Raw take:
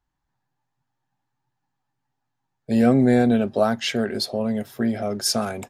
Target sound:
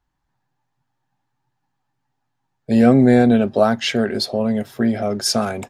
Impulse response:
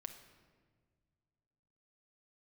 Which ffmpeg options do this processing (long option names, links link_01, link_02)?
-af "highshelf=frequency=9800:gain=-8.5,volume=4.5dB"